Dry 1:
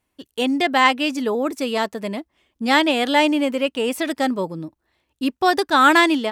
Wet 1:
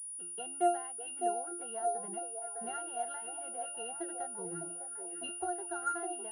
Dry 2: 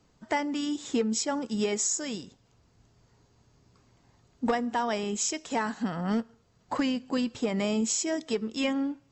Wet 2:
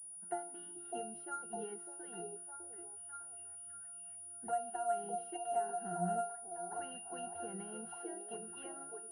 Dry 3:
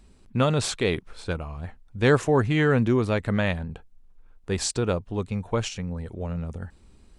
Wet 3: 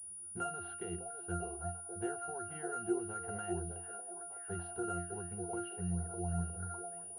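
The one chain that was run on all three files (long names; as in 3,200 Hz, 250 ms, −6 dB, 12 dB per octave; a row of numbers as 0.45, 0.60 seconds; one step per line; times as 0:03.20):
three-way crossover with the lows and the highs turned down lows −18 dB, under 510 Hz, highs −13 dB, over 2,100 Hz
downward compressor 6 to 1, threshold −33 dBFS
resonances in every octave F, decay 0.38 s
echo through a band-pass that steps 604 ms, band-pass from 510 Hz, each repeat 0.7 octaves, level −2 dB
switching amplifier with a slow clock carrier 9,700 Hz
level +15.5 dB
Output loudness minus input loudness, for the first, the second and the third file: −17.5, −12.5, −14.5 LU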